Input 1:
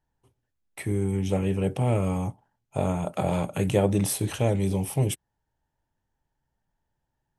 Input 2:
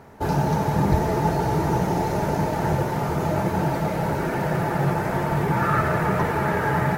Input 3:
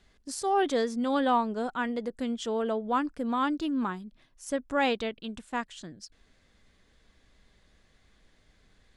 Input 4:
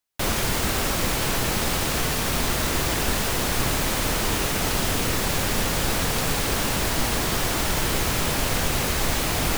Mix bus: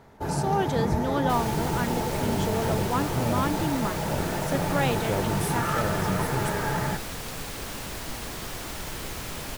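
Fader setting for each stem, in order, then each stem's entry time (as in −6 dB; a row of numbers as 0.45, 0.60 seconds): −6.5, −6.0, −1.0, −11.5 decibels; 1.35, 0.00, 0.00, 1.10 seconds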